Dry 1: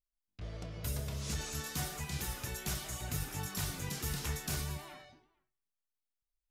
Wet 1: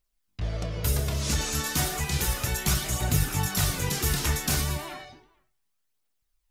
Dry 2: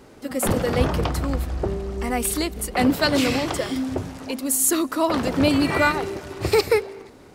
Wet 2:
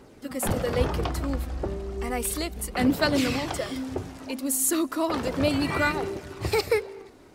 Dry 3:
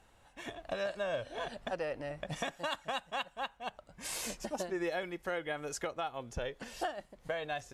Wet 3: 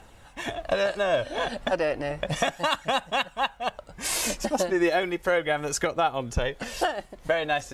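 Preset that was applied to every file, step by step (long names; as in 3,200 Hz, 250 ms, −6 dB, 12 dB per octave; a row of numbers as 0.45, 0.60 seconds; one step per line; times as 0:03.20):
phase shifter 0.33 Hz, delay 3.9 ms, feedback 29%
loudness normalisation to −27 LKFS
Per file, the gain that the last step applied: +11.0, −5.0, +11.5 decibels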